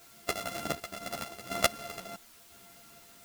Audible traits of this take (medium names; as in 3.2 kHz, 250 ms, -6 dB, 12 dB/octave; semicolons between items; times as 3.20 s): a buzz of ramps at a fixed pitch in blocks of 64 samples; random-step tremolo 4 Hz, depth 70%; a quantiser's noise floor 10-bit, dither triangular; a shimmering, thickened sound